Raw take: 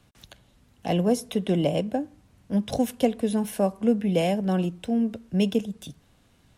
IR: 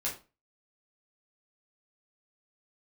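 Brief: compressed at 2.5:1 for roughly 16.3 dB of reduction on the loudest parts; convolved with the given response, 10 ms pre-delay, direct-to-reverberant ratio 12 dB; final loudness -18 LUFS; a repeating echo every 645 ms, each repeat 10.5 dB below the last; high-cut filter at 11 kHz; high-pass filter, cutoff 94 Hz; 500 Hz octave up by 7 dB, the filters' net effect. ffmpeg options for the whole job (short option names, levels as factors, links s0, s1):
-filter_complex "[0:a]highpass=94,lowpass=11000,equalizer=f=500:t=o:g=8,acompressor=threshold=0.0141:ratio=2.5,aecho=1:1:645|1290|1935:0.299|0.0896|0.0269,asplit=2[s0][s1];[1:a]atrim=start_sample=2205,adelay=10[s2];[s1][s2]afir=irnorm=-1:irlink=0,volume=0.168[s3];[s0][s3]amix=inputs=2:normalize=0,volume=7.5"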